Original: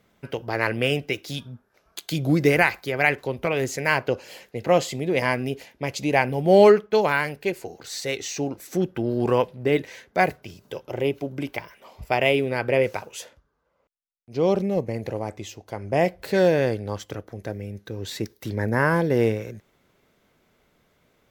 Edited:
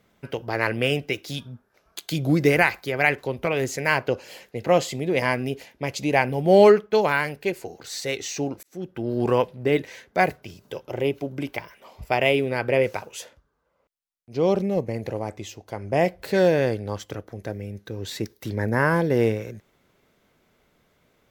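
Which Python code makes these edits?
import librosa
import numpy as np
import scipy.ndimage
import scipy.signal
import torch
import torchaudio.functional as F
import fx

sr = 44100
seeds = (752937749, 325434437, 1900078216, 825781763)

y = fx.edit(x, sr, fx.fade_in_span(start_s=8.63, length_s=0.57), tone=tone)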